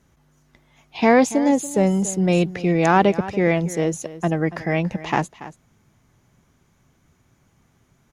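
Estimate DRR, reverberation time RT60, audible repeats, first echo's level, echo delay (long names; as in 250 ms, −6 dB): no reverb audible, no reverb audible, 1, −16.0 dB, 283 ms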